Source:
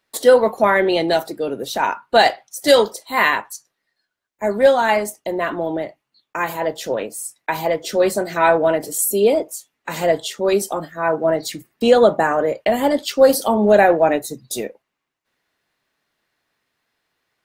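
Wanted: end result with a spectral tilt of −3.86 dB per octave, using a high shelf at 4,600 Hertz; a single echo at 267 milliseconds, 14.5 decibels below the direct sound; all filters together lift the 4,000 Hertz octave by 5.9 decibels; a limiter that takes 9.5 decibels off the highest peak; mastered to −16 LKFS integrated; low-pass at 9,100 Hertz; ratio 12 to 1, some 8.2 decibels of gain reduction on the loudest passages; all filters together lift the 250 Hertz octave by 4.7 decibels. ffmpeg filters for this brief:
ffmpeg -i in.wav -af "lowpass=9100,equalizer=frequency=250:width_type=o:gain=6,equalizer=frequency=4000:width_type=o:gain=9,highshelf=frequency=4600:gain=-4.5,acompressor=threshold=-13dB:ratio=12,alimiter=limit=-12.5dB:level=0:latency=1,aecho=1:1:267:0.188,volume=7dB" out.wav

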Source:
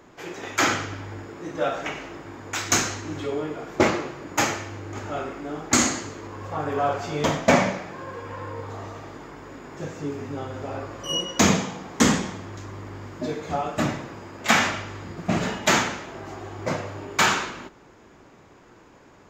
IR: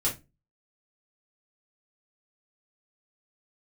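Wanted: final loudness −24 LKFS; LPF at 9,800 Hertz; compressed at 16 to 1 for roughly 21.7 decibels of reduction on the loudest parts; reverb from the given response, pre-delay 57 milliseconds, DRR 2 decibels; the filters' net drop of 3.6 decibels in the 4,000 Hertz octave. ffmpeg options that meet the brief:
-filter_complex "[0:a]lowpass=9800,equalizer=frequency=4000:width_type=o:gain=-5,acompressor=threshold=-36dB:ratio=16,asplit=2[link_01][link_02];[1:a]atrim=start_sample=2205,adelay=57[link_03];[link_02][link_03]afir=irnorm=-1:irlink=0,volume=-9.5dB[link_04];[link_01][link_04]amix=inputs=2:normalize=0,volume=13.5dB"

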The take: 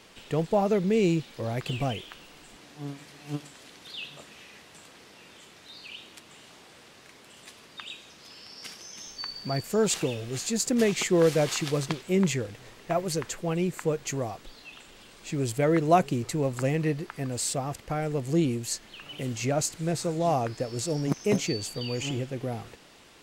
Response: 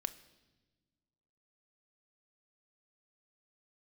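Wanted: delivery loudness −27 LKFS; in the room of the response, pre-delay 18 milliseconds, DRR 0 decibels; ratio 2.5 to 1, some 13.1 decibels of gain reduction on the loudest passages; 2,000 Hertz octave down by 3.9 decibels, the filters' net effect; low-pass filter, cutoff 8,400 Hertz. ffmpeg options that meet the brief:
-filter_complex "[0:a]lowpass=8400,equalizer=frequency=2000:width_type=o:gain=-5,acompressor=threshold=-37dB:ratio=2.5,asplit=2[link_01][link_02];[1:a]atrim=start_sample=2205,adelay=18[link_03];[link_02][link_03]afir=irnorm=-1:irlink=0,volume=1dB[link_04];[link_01][link_04]amix=inputs=2:normalize=0,volume=8dB"

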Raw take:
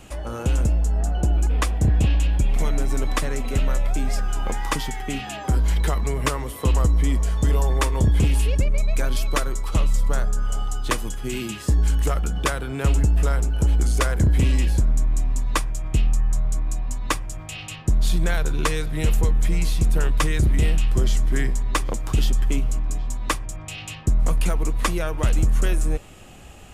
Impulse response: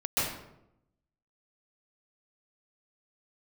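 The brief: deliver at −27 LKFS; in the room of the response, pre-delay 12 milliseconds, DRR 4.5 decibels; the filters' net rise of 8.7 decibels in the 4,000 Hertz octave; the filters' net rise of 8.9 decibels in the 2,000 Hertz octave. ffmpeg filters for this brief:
-filter_complex "[0:a]equalizer=frequency=2000:width_type=o:gain=9,equalizer=frequency=4000:width_type=o:gain=8,asplit=2[link_01][link_02];[1:a]atrim=start_sample=2205,adelay=12[link_03];[link_02][link_03]afir=irnorm=-1:irlink=0,volume=-14.5dB[link_04];[link_01][link_04]amix=inputs=2:normalize=0,volume=-6.5dB"

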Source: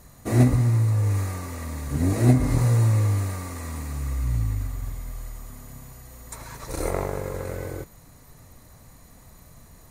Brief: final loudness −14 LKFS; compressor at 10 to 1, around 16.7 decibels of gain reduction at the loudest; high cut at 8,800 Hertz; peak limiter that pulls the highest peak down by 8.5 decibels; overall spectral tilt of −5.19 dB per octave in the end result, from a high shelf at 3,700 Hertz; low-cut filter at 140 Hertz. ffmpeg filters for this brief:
ffmpeg -i in.wav -af "highpass=140,lowpass=8800,highshelf=frequency=3700:gain=3.5,acompressor=threshold=-31dB:ratio=10,volume=26dB,alimiter=limit=-4dB:level=0:latency=1" out.wav

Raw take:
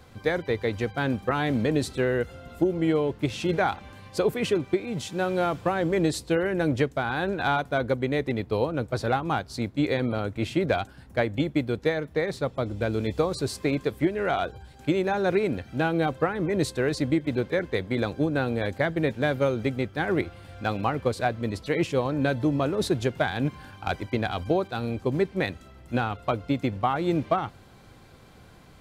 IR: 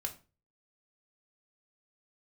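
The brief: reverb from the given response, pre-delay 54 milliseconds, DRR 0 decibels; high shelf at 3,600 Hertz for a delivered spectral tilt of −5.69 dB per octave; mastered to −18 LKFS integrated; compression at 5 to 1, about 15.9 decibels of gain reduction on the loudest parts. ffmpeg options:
-filter_complex "[0:a]highshelf=frequency=3600:gain=-6.5,acompressor=threshold=-38dB:ratio=5,asplit=2[link_01][link_02];[1:a]atrim=start_sample=2205,adelay=54[link_03];[link_02][link_03]afir=irnorm=-1:irlink=0,volume=0dB[link_04];[link_01][link_04]amix=inputs=2:normalize=0,volume=20dB"

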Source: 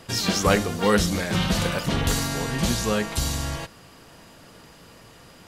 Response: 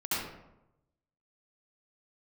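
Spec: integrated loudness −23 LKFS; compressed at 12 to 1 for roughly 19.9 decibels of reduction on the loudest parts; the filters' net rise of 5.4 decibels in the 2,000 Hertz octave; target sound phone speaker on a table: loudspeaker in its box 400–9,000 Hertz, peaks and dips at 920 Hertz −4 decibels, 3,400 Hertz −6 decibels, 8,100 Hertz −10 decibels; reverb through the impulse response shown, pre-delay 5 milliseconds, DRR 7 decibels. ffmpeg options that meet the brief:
-filter_complex "[0:a]equalizer=frequency=2000:width_type=o:gain=7.5,acompressor=threshold=-33dB:ratio=12,asplit=2[link_01][link_02];[1:a]atrim=start_sample=2205,adelay=5[link_03];[link_02][link_03]afir=irnorm=-1:irlink=0,volume=-14.5dB[link_04];[link_01][link_04]amix=inputs=2:normalize=0,highpass=frequency=400:width=0.5412,highpass=frequency=400:width=1.3066,equalizer=frequency=920:width_type=q:width=4:gain=-4,equalizer=frequency=3400:width_type=q:width=4:gain=-6,equalizer=frequency=8100:width_type=q:width=4:gain=-10,lowpass=frequency=9000:width=0.5412,lowpass=frequency=9000:width=1.3066,volume=17dB"

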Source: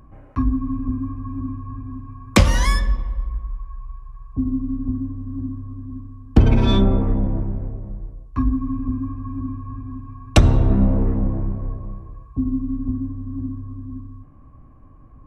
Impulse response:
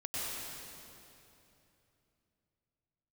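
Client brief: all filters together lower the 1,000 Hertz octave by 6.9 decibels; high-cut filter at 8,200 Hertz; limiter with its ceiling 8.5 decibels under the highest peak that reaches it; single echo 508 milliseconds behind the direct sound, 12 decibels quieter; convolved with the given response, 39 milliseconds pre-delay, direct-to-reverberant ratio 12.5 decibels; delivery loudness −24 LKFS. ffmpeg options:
-filter_complex "[0:a]lowpass=8200,equalizer=frequency=1000:width_type=o:gain=-8.5,alimiter=limit=-10dB:level=0:latency=1,aecho=1:1:508:0.251,asplit=2[link_01][link_02];[1:a]atrim=start_sample=2205,adelay=39[link_03];[link_02][link_03]afir=irnorm=-1:irlink=0,volume=-16.5dB[link_04];[link_01][link_04]amix=inputs=2:normalize=0,volume=1dB"

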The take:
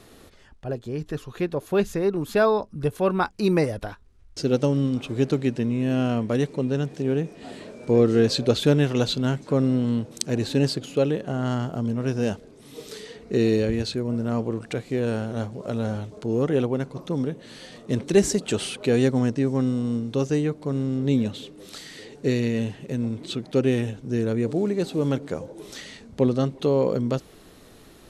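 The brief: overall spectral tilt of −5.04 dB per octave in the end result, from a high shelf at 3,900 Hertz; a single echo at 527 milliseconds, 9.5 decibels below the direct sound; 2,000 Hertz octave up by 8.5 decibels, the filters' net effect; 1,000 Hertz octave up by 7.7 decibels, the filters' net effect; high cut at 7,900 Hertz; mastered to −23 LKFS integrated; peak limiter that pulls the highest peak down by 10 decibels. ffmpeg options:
ffmpeg -i in.wav -af "lowpass=7900,equalizer=frequency=1000:width_type=o:gain=7.5,equalizer=frequency=2000:width_type=o:gain=7.5,highshelf=frequency=3900:gain=5,alimiter=limit=-12dB:level=0:latency=1,aecho=1:1:527:0.335,volume=2dB" out.wav

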